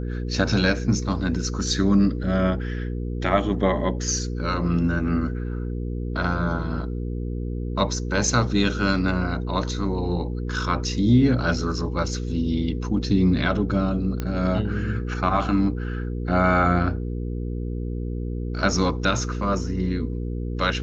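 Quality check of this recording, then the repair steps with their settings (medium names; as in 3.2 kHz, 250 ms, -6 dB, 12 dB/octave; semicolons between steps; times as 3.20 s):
hum 60 Hz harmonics 8 -28 dBFS
14.20 s: pop -14 dBFS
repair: de-click; de-hum 60 Hz, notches 8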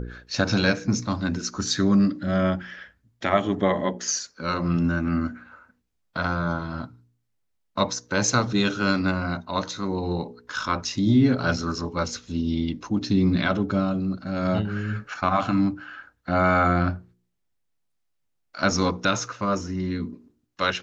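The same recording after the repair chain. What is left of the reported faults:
nothing left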